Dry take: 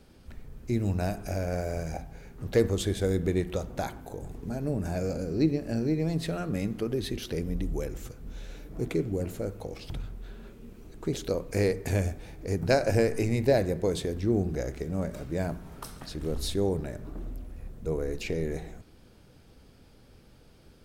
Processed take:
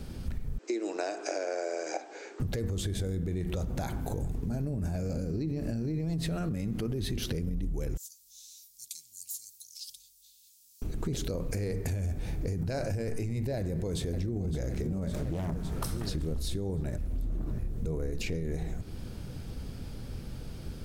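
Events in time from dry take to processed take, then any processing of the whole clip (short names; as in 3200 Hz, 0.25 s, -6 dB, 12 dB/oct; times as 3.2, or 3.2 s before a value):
0.58–2.4 Chebyshev band-pass 320–7800 Hz, order 5
7.97–10.82 inverse Chebyshev high-pass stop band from 1500 Hz, stop band 60 dB
13.57–14.42 echo throw 0.56 s, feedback 65%, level -12 dB
15.13–15.81 Doppler distortion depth 0.66 ms
16.98–17.59 reverse
whole clip: tone controls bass +9 dB, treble +3 dB; limiter -23.5 dBFS; compressor, threshold -38 dBFS; gain +8.5 dB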